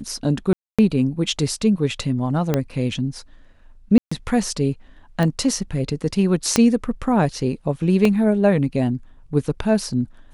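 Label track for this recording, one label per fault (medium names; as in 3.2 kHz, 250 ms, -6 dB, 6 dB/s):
0.530000	0.790000	dropout 256 ms
2.540000	2.540000	pop -6 dBFS
3.980000	4.120000	dropout 135 ms
5.230000	5.230000	pop -10 dBFS
6.560000	6.560000	pop -2 dBFS
8.050000	8.050000	dropout 2.7 ms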